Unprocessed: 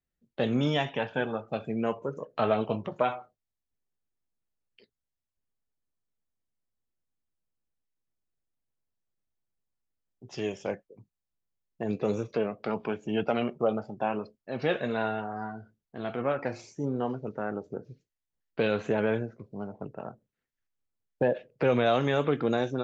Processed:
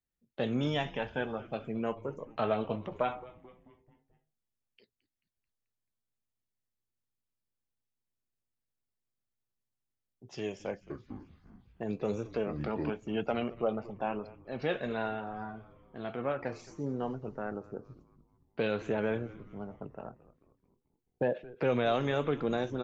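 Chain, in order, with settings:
echo with shifted repeats 218 ms, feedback 55%, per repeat −120 Hz, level −19 dB
0:10.70–0:12.90: delay with pitch and tempo change per echo 201 ms, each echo −6 semitones, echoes 2
level −4.5 dB

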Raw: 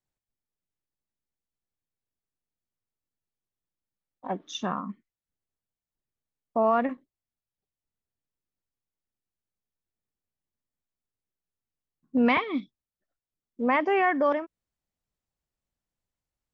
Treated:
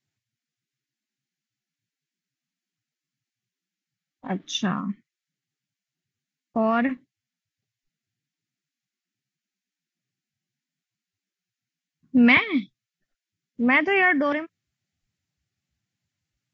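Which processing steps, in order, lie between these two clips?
graphic EQ with 10 bands 125 Hz +6 dB, 500 Hz −8 dB, 1,000 Hz −9 dB, 2,000 Hz +5 dB
level +7 dB
Ogg Vorbis 48 kbit/s 16,000 Hz

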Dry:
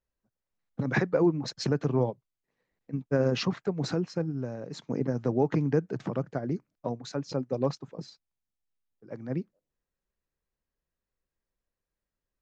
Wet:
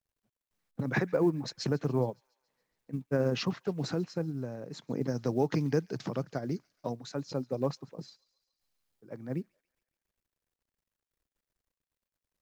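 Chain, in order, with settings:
0:05.01–0:06.93: parametric band 5,000 Hz +13.5 dB 1.3 octaves
log-companded quantiser 8 bits
on a send: delay with a high-pass on its return 140 ms, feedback 59%, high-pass 2,200 Hz, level −21.5 dB
on the sum: level −3 dB

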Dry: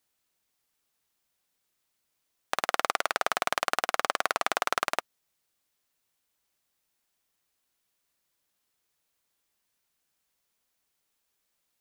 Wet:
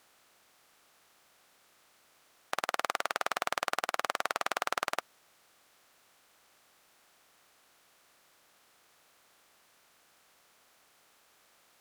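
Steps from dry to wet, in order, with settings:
compressor on every frequency bin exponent 0.6
level −6.5 dB

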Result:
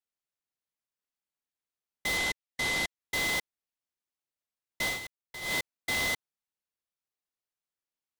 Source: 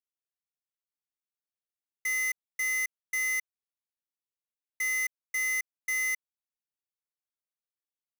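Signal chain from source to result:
0:02.17–0:03.00: linear-phase brick-wall band-pass 1,800–6,900 Hz
0:04.86–0:05.55: duck −11.5 dB, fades 0.14 s
short delay modulated by noise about 1,500 Hz, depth 0.049 ms

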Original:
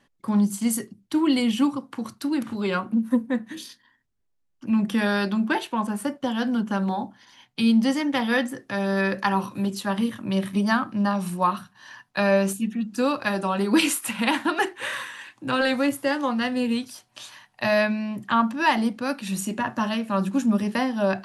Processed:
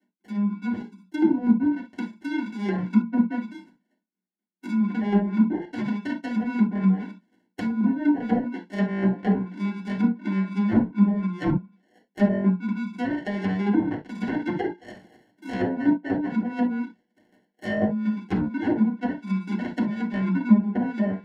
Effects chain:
adaptive Wiener filter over 41 samples
square-wave tremolo 4.1 Hz, depth 65%, duty 15%
Chebyshev high-pass filter 180 Hz, order 8
high-shelf EQ 4,200 Hz −5 dB
decimation without filtering 36×
0:00.68–0:01.60: parametric band 1,800 Hz −6 dB 1.9 octaves
treble cut that deepens with the level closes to 800 Hz, closed at −26 dBFS
automatic gain control gain up to 8 dB
convolution reverb, pre-delay 3 ms, DRR −3.5 dB
level −8.5 dB

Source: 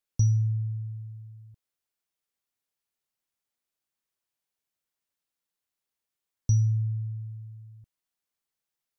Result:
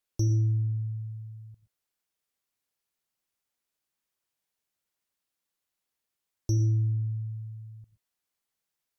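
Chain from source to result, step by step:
reverb whose tail is shaped and stops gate 140 ms rising, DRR 11 dB
sine wavefolder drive 5 dB, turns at −14.5 dBFS
level −7 dB

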